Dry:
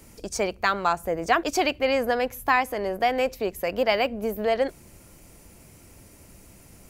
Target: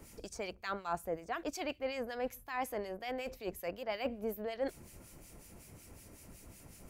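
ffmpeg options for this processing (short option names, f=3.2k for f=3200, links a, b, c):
-filter_complex "[0:a]areverse,acompressor=threshold=-30dB:ratio=10,areverse,acrossover=split=1800[a][b];[a]aeval=exprs='val(0)*(1-0.7/2+0.7/2*cos(2*PI*5.4*n/s))':c=same[c];[b]aeval=exprs='val(0)*(1-0.7/2-0.7/2*cos(2*PI*5.4*n/s))':c=same[d];[c][d]amix=inputs=2:normalize=0,volume=-1.5dB"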